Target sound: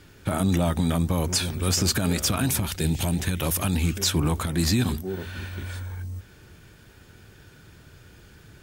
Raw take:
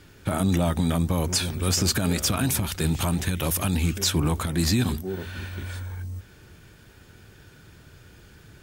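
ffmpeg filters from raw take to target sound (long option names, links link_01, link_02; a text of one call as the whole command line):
ffmpeg -i in.wav -filter_complex "[0:a]asettb=1/sr,asplit=3[link_01][link_02][link_03];[link_01]atrim=end=2.764[link_04];[link_02]atrim=start=2.76:end=3.2,asetpts=PTS-STARTPTS,afade=type=in:duration=0.004:curve=qsin,afade=type=out:start_time=0.436:duration=0.004:curve=qsin,equalizer=frequency=1200:width_type=o:width=0.52:gain=-13[link_05];[link_03]atrim=start=3.196[link_06];[link_04][link_05]acrossfade=duration=0.004:curve1=hsin:curve2=qsin[link_07];[link_07][link_06]acrossfade=duration=0.004:curve1=qsin:curve2=hsin" out.wav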